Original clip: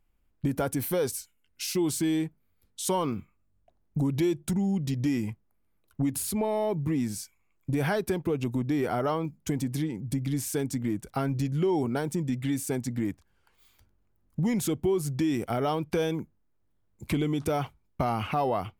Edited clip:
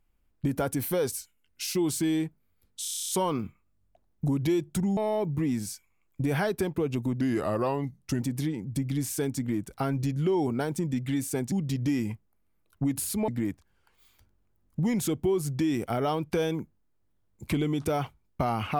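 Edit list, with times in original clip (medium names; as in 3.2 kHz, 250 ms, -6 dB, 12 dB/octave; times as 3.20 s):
2.82 s: stutter 0.03 s, 10 plays
4.70–6.46 s: move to 12.88 s
8.70–9.57 s: speed 87%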